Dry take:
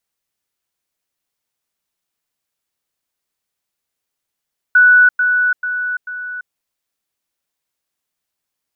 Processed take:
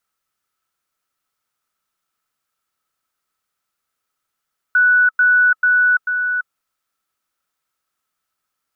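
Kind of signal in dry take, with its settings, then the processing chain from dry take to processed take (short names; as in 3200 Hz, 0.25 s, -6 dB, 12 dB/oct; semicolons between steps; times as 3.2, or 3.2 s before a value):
level ladder 1480 Hz -5.5 dBFS, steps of -6 dB, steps 4, 0.34 s 0.10 s
bell 1400 Hz +5 dB 0.91 oct; small resonant body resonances 1300 Hz, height 13 dB, ringing for 35 ms; limiter -9.5 dBFS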